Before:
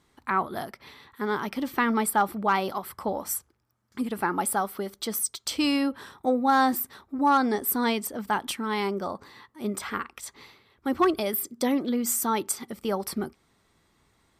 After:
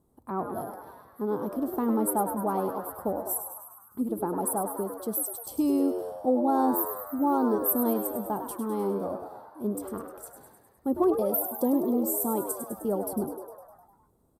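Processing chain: EQ curve 640 Hz 0 dB, 1200 Hz -12 dB, 2000 Hz -29 dB, 6200 Hz -17 dB, 11000 Hz +1 dB; on a send: frequency-shifting echo 0.102 s, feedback 62%, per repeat +84 Hz, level -8.5 dB

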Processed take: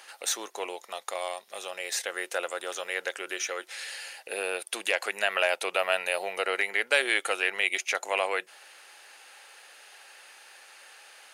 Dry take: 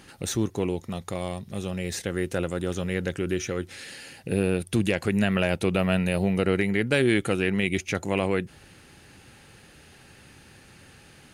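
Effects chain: HPF 600 Hz 24 dB/oct; gain +3 dB

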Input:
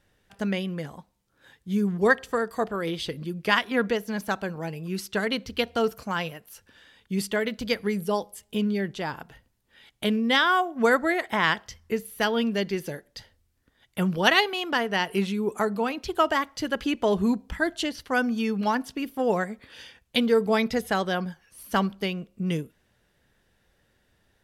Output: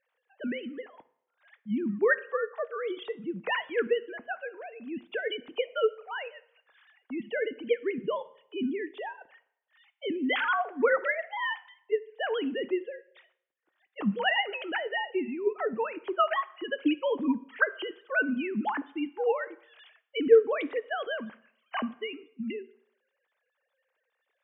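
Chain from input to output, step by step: sine-wave speech; on a send: reverb RT60 0.75 s, pre-delay 3 ms, DRR 14 dB; on the sum: gain -4.5 dB

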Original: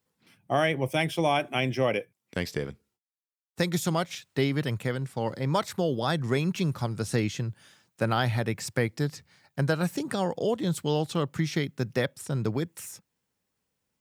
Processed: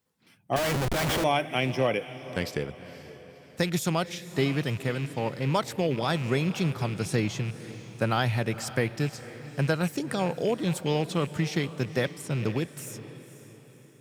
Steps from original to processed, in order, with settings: rattling part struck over -31 dBFS, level -30 dBFS; diffused feedback echo 0.511 s, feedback 45%, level -14.5 dB; 0.56–1.24 Schmitt trigger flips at -37 dBFS

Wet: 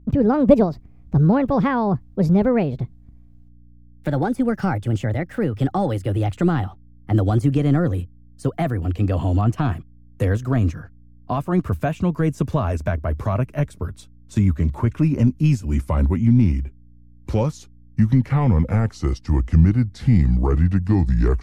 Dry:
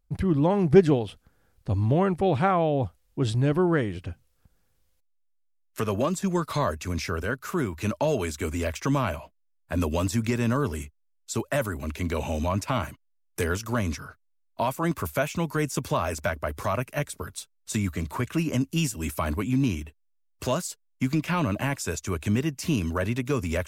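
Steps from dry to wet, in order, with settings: speed glide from 150% -> 71%; tilt -3.5 dB/oct; hum 60 Hz, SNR 30 dB

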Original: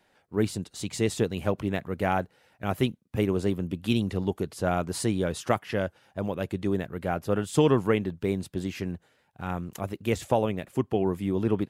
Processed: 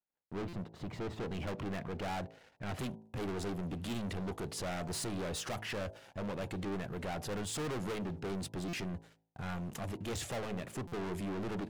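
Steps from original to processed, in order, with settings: overloaded stage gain 26.5 dB; LPF 1200 Hz 12 dB/oct, from 1.31 s 4000 Hz, from 2.79 s 10000 Hz; sample leveller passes 3; gate -53 dBFS, range -26 dB; limiter -29 dBFS, peak gain reduction 3.5 dB; de-hum 54.4 Hz, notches 18; stuck buffer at 0.48/8.68/10.87, samples 256, times 8; gain -6 dB

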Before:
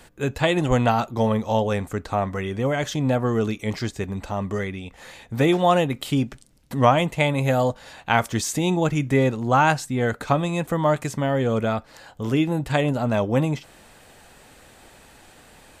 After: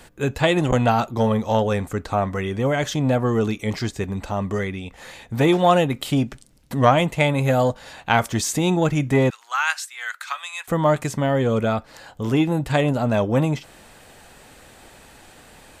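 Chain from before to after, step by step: 9.3–10.68 HPF 1300 Hz 24 dB/oct; core saturation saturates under 500 Hz; gain +2.5 dB

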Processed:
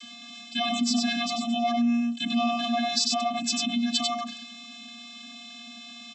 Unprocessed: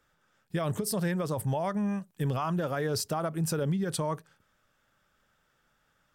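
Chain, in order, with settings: resonant high shelf 2100 Hz +13 dB, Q 3; vocoder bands 32, square 236 Hz; echo 96 ms -4.5 dB; fast leveller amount 50%; gain -1.5 dB

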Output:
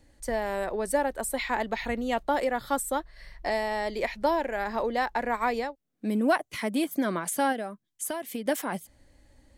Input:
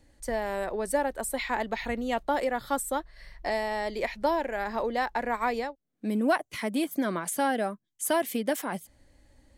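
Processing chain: 7.52–8.46 compressor 6:1, threshold -31 dBFS, peak gain reduction 10.5 dB; gain +1 dB

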